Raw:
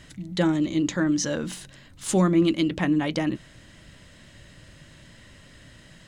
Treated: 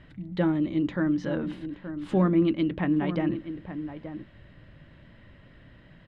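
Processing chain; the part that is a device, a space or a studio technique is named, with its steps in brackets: shout across a valley (air absorption 430 m; outdoor echo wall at 150 m, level -10 dB); gain -1.5 dB

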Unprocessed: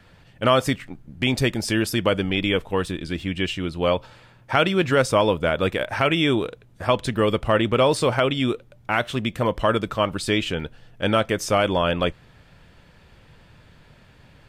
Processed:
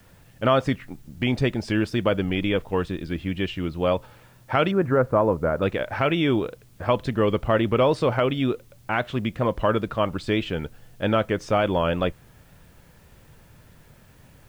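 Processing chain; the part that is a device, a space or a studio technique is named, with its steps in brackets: 4.71–5.62 inverse Chebyshev low-pass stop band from 6800 Hz, stop band 70 dB; cassette deck with a dirty head (tape spacing loss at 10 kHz 20 dB; wow and flutter; white noise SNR 38 dB)

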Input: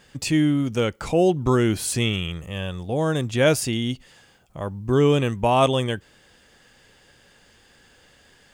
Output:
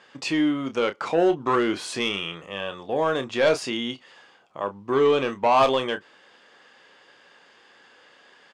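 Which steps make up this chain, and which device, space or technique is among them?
intercom (BPF 340–4300 Hz; bell 1100 Hz +6 dB 0.54 oct; soft clip -14 dBFS, distortion -14 dB; doubler 30 ms -9.5 dB); gain +1.5 dB

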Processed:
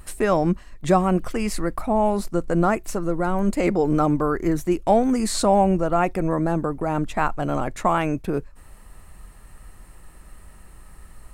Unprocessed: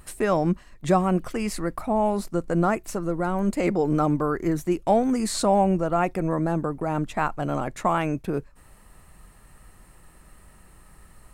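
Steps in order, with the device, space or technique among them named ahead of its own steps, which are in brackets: low shelf boost with a cut just above (low shelf 74 Hz +6.5 dB; bell 150 Hz -2.5 dB 0.77 oct); gain +2.5 dB

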